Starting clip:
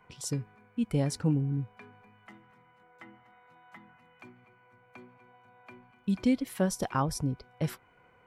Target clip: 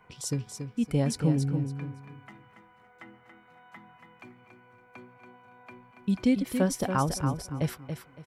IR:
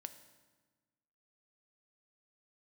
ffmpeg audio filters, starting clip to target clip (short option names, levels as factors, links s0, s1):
-af "aecho=1:1:281|562|843:0.422|0.105|0.0264,volume=1.26"